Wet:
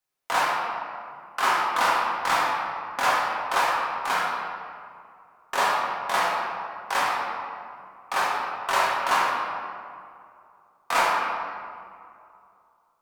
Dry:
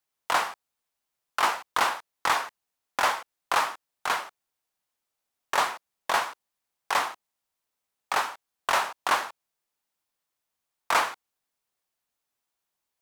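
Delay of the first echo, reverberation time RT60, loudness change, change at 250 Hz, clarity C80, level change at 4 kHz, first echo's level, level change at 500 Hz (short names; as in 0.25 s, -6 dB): none, 2.4 s, +2.5 dB, +5.0 dB, 1.0 dB, +1.5 dB, none, +4.5 dB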